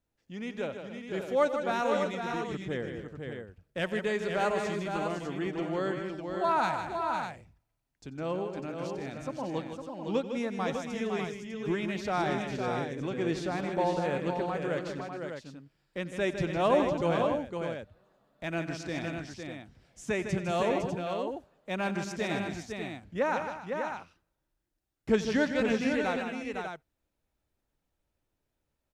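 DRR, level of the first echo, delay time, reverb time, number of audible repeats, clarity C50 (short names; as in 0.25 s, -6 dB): none, -17.5 dB, 90 ms, none, 5, none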